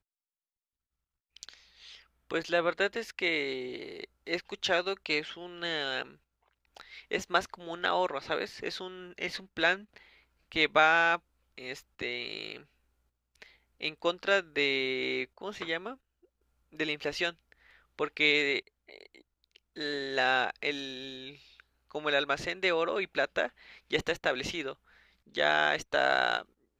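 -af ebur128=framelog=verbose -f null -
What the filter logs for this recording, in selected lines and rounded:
Integrated loudness:
  I:         -30.5 LUFS
  Threshold: -41.8 LUFS
Loudness range:
  LRA:         4.9 LU
  Threshold: -52.1 LUFS
  LRA low:   -34.3 LUFS
  LRA high:  -29.4 LUFS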